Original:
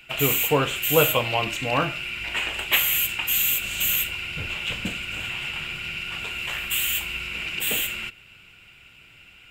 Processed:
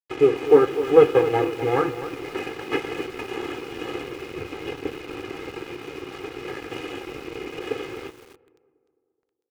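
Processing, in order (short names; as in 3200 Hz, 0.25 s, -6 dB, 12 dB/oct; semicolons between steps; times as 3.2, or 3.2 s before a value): minimum comb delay 2.4 ms; Chebyshev band-pass 240–1800 Hz, order 2; tilt shelf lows +10 dB, about 640 Hz; notch 880 Hz, Q 13; comb 2.4 ms, depth 73%; in parallel at -2 dB: compressor, threshold -39 dBFS, peak gain reduction 26 dB; on the sum: crossover distortion -41 dBFS; tape echo 0.21 s, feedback 63%, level -22 dB, low-pass 1500 Hz; on a send at -21 dB: reverb RT60 1.7 s, pre-delay 5 ms; on the sum: lo-fi delay 0.254 s, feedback 35%, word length 7-bit, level -12 dB; gain +2.5 dB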